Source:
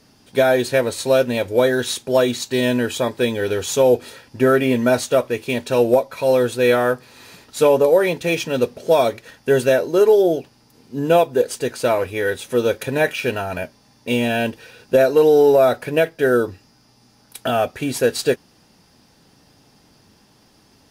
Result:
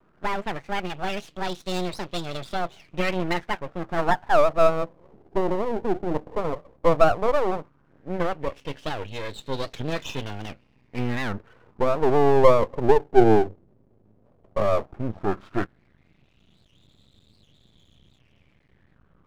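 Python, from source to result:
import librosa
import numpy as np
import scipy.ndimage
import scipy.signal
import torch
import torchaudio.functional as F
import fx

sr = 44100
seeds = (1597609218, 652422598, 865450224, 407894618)

y = fx.speed_glide(x, sr, from_pct=155, to_pct=62)
y = fx.low_shelf(y, sr, hz=170.0, db=6.0)
y = fx.filter_lfo_lowpass(y, sr, shape='sine', hz=0.13, low_hz=390.0, high_hz=3900.0, q=5.8)
y = fx.low_shelf(y, sr, hz=470.0, db=10.5)
y = np.maximum(y, 0.0)
y = fx.record_warp(y, sr, rpm=78.0, depth_cents=250.0)
y = F.gain(torch.from_numpy(y), -13.0).numpy()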